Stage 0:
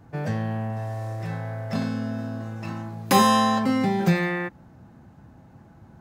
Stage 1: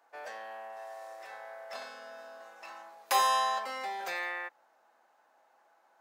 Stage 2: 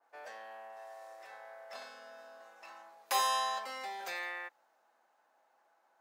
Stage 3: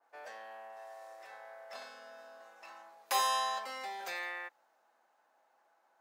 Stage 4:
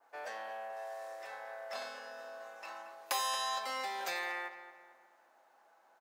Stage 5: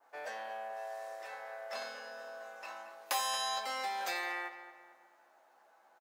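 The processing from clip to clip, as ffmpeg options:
-af "highpass=f=590:w=0.5412,highpass=f=590:w=1.3066,volume=-6.5dB"
-af "adynamicequalizer=threshold=0.00631:dfrequency=2500:dqfactor=0.7:tfrequency=2500:tqfactor=0.7:attack=5:release=100:ratio=0.375:range=2:mode=boostabove:tftype=highshelf,volume=-5dB"
-af anull
-filter_complex "[0:a]acrossover=split=1400|3400[a][b][c];[a]acompressor=threshold=-43dB:ratio=4[d];[b]acompressor=threshold=-48dB:ratio=4[e];[c]acompressor=threshold=-43dB:ratio=4[f];[d][e][f]amix=inputs=3:normalize=0,asplit=2[g][h];[h]adelay=225,lowpass=f=2.7k:p=1,volume=-11dB,asplit=2[i][j];[j]adelay=225,lowpass=f=2.7k:p=1,volume=0.45,asplit=2[k][l];[l]adelay=225,lowpass=f=2.7k:p=1,volume=0.45,asplit=2[m][n];[n]adelay=225,lowpass=f=2.7k:p=1,volume=0.45,asplit=2[o][p];[p]adelay=225,lowpass=f=2.7k:p=1,volume=0.45[q];[g][i][k][m][o][q]amix=inputs=6:normalize=0,volume=5dB"
-filter_complex "[0:a]asplit=2[a][b];[b]adelay=14,volume=-7dB[c];[a][c]amix=inputs=2:normalize=0"

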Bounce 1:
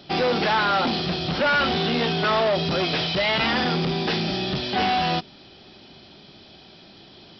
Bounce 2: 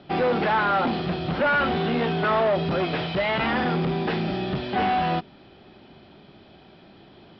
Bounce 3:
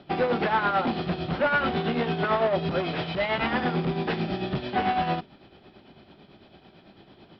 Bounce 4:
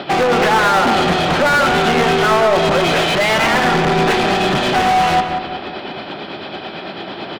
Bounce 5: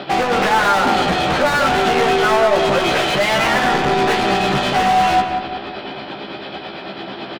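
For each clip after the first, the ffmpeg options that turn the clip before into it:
-af "lowpass=2.1k"
-af "tremolo=f=9:d=0.55"
-filter_complex "[0:a]asplit=2[a][b];[b]highpass=f=720:p=1,volume=29dB,asoftclip=type=tanh:threshold=-15.5dB[c];[a][c]amix=inputs=2:normalize=0,lowpass=f=3.7k:p=1,volume=-6dB,asplit=2[d][e];[e]adelay=182,lowpass=f=2.1k:p=1,volume=-6dB,asplit=2[f][g];[g]adelay=182,lowpass=f=2.1k:p=1,volume=0.48,asplit=2[h][i];[i]adelay=182,lowpass=f=2.1k:p=1,volume=0.48,asplit=2[j][k];[k]adelay=182,lowpass=f=2.1k:p=1,volume=0.48,asplit=2[l][m];[m]adelay=182,lowpass=f=2.1k:p=1,volume=0.48,asplit=2[n][o];[o]adelay=182,lowpass=f=2.1k:p=1,volume=0.48[p];[d][f][h][j][l][n][p]amix=inputs=7:normalize=0,volume=6.5dB"
-filter_complex "[0:a]asplit=2[a][b];[b]adelay=15,volume=-4.5dB[c];[a][c]amix=inputs=2:normalize=0,volume=-3dB"

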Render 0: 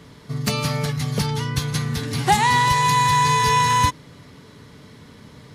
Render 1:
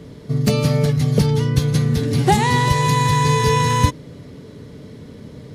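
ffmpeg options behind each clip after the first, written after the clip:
-af "lowshelf=f=710:t=q:w=1.5:g=8,volume=-1dB"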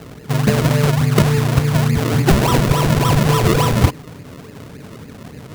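-af "acrusher=samples=38:mix=1:aa=0.000001:lfo=1:lforange=38:lforate=3.5,volume=2dB"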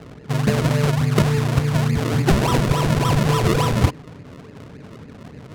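-af "adynamicsmooth=sensitivity=8:basefreq=2.6k,volume=-3.5dB"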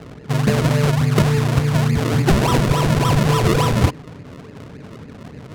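-af "asoftclip=type=tanh:threshold=-6.5dB,volume=2.5dB"

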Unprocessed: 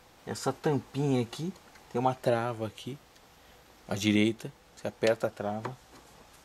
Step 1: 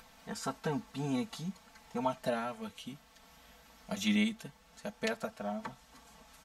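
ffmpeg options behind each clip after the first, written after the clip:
-af "equalizer=f=390:t=o:w=0.46:g=-14,aecho=1:1:4.5:0.99,acompressor=mode=upward:threshold=-47dB:ratio=2.5,volume=-6dB"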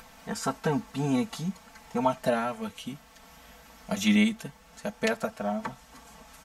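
-af "equalizer=f=3.9k:w=1.8:g=-3.5,volume=7.5dB"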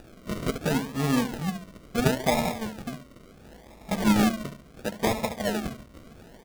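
-filter_complex "[0:a]asplit=2[a][b];[b]adelay=70,lowpass=f=2.1k:p=1,volume=-9dB,asplit=2[c][d];[d]adelay=70,lowpass=f=2.1k:p=1,volume=0.47,asplit=2[e][f];[f]adelay=70,lowpass=f=2.1k:p=1,volume=0.47,asplit=2[g][h];[h]adelay=70,lowpass=f=2.1k:p=1,volume=0.47,asplit=2[i][j];[j]adelay=70,lowpass=f=2.1k:p=1,volume=0.47[k];[a][c][e][g][i][k]amix=inputs=6:normalize=0,acrusher=samples=41:mix=1:aa=0.000001:lfo=1:lforange=24.6:lforate=0.72,volume=2dB"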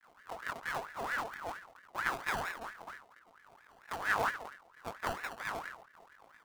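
-af "aeval=exprs='max(val(0),0)':c=same,flanger=delay=18:depth=6.2:speed=0.93,aeval=exprs='val(0)*sin(2*PI*1200*n/s+1200*0.45/4.4*sin(2*PI*4.4*n/s))':c=same,volume=-4dB"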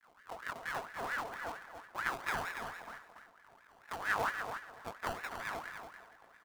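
-af "aecho=1:1:284|568|852:0.398|0.0717|0.0129,volume=-2dB"

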